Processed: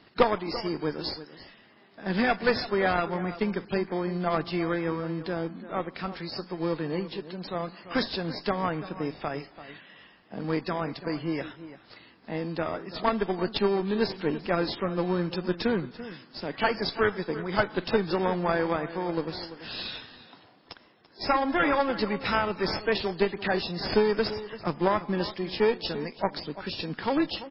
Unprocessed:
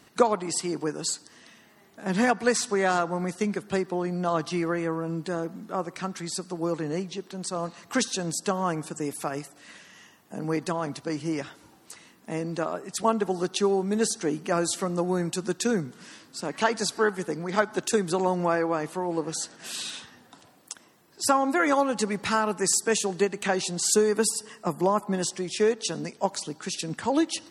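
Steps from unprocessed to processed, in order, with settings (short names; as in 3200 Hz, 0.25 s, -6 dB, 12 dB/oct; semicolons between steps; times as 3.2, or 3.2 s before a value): low shelf 410 Hz -4 dB; in parallel at -11.5 dB: sample-and-hold 32×; on the sum: added harmonics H 2 -14 dB, 4 -12 dB, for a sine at -5.5 dBFS; outdoor echo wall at 58 m, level -14 dB; MP3 16 kbps 12000 Hz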